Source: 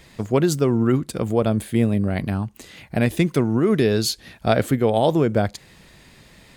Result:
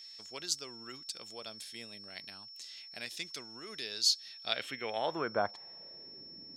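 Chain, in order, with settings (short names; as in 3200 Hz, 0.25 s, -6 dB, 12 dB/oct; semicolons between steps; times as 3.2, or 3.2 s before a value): band-pass sweep 5100 Hz -> 290 Hz, 4.27–6.35; whine 5400 Hz -48 dBFS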